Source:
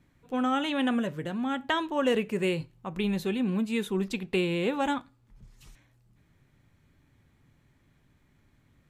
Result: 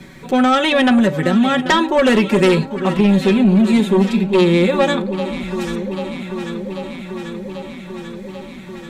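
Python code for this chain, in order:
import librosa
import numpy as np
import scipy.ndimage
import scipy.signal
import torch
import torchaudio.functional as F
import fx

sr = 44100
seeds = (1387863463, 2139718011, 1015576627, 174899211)

y = fx.notch(x, sr, hz=2900.0, q=14.0)
y = y + 0.74 * np.pad(y, (int(5.3 * sr / 1000.0), 0))[:len(y)]
y = fx.hpss(y, sr, part='percussive', gain_db=-17, at=(2.95, 4.98))
y = fx.graphic_eq(y, sr, hz=(250, 500, 2000, 4000, 8000), db=(5, 4, 5, 6, 4))
y = fx.fold_sine(y, sr, drive_db=6, ceiling_db=-8.5)
y = fx.echo_alternate(y, sr, ms=395, hz=970.0, feedback_pct=80, wet_db=-12.0)
y = fx.band_squash(y, sr, depth_pct=40)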